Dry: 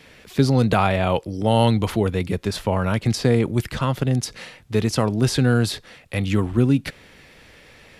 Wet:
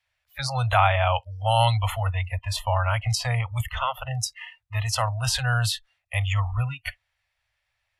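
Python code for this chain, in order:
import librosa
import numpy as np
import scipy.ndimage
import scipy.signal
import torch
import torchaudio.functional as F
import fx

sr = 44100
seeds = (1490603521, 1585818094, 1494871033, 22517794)

y = scipy.signal.sosfilt(scipy.signal.cheby2(4, 40, [170.0, 430.0], 'bandstop', fs=sr, output='sos'), x)
y = fx.noise_reduce_blind(y, sr, reduce_db=29)
y = y * librosa.db_to_amplitude(1.5)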